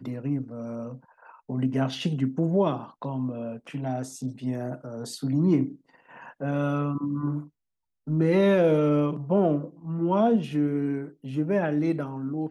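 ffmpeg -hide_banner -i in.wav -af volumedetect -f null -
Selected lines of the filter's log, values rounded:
mean_volume: -26.5 dB
max_volume: -11.7 dB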